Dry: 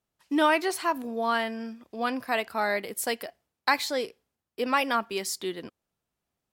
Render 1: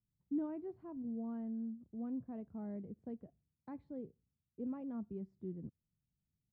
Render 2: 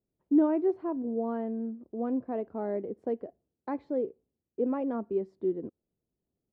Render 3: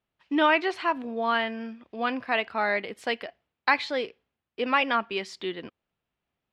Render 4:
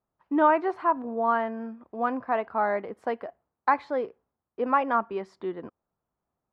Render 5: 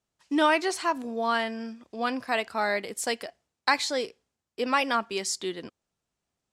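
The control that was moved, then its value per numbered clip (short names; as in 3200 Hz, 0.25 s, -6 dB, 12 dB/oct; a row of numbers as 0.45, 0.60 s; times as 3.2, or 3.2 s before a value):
synth low-pass, frequency: 150, 390, 2900, 1100, 7500 Hz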